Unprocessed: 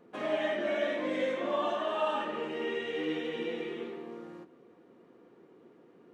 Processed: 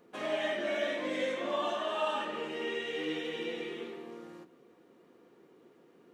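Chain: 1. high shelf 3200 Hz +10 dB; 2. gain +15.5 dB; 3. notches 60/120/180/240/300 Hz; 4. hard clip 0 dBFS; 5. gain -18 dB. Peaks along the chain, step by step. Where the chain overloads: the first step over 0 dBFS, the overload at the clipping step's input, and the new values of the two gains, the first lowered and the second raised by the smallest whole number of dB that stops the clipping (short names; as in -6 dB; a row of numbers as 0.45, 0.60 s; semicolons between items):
-17.5, -2.0, -2.0, -2.0, -20.0 dBFS; no overload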